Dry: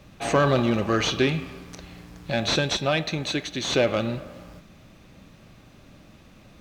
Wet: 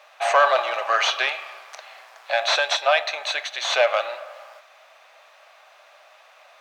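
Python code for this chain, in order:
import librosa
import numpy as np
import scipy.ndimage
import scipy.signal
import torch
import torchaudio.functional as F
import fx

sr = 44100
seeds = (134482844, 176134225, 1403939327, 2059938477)

y = scipy.signal.sosfilt(scipy.signal.ellip(4, 1.0, 70, 640.0, 'highpass', fs=sr, output='sos'), x)
y = fx.high_shelf(y, sr, hz=3500.0, db=-10.0)
y = y * librosa.db_to_amplitude(9.0)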